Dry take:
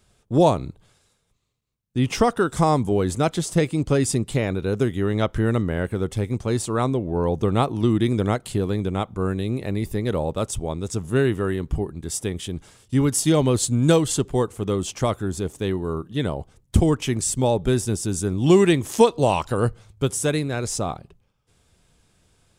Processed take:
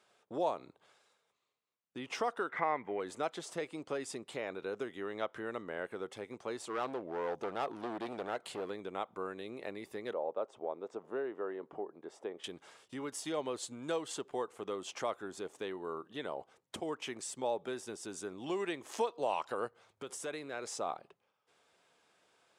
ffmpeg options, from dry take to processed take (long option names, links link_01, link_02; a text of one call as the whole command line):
ffmpeg -i in.wav -filter_complex "[0:a]asettb=1/sr,asplit=3[link_01][link_02][link_03];[link_01]atrim=end=2.494[link_04];[link_02]atrim=start=2.49:end=3,asetpts=PTS-STARTPTS,afade=type=in:duration=0.004:curve=qsin,afade=type=out:start_time=0.506:duration=0.004:curve=qsin,lowpass=frequency=2000:width_type=q:width=11[link_05];[link_03]atrim=start=2.996[link_06];[link_04][link_05]acrossfade=duration=0.004:curve1=hsin:curve2=qsin[link_07];[link_07][link_06]acrossfade=duration=0.004:curve1=qsin:curve2=hsin,asettb=1/sr,asplit=3[link_08][link_09][link_10];[link_08]atrim=end=6.684[link_11];[link_09]atrim=start=6.68:end=8.7,asetpts=PTS-STARTPTS,afade=type=in:duration=0.004:curve=qsin,afade=type=out:start_time=2.016:duration=0.004:curve=qsin,asoftclip=type=hard:threshold=-21dB[link_12];[link_10]atrim=start=8.696[link_13];[link_11][link_12]acrossfade=duration=0.004:curve1=hsin:curve2=qsin[link_14];[link_14][link_13]acrossfade=duration=0.004:curve1=qsin:curve2=hsin,asettb=1/sr,asplit=3[link_15][link_16][link_17];[link_15]atrim=end=10.134[link_18];[link_16]atrim=start=10.13:end=12.44,asetpts=PTS-STARTPTS,afade=type=in:duration=0.004:curve=qsin,afade=type=out:start_time=2.306:duration=0.004:curve=qsin,bandpass=frequency=540:width_type=q:width=0.97[link_19];[link_17]atrim=start=12.436[link_20];[link_18][link_19]acrossfade=duration=0.004:curve1=hsin:curve2=qsin[link_21];[link_21][link_20]acrossfade=duration=0.004:curve1=qsin:curve2=hsin,asplit=3[link_22][link_23][link_24];[link_22]afade=type=out:start_time=19.67:duration=0.02[link_25];[link_23]acompressor=threshold=-24dB:ratio=6:attack=3.2:release=140:knee=1:detection=peak,afade=type=in:start_time=19.67:duration=0.02,afade=type=out:start_time=20.67:duration=0.02[link_26];[link_24]afade=type=in:start_time=20.67:duration=0.02[link_27];[link_25][link_26][link_27]amix=inputs=3:normalize=0,acompressor=threshold=-31dB:ratio=2.5,highpass=550,aemphasis=mode=reproduction:type=75kf" out.wav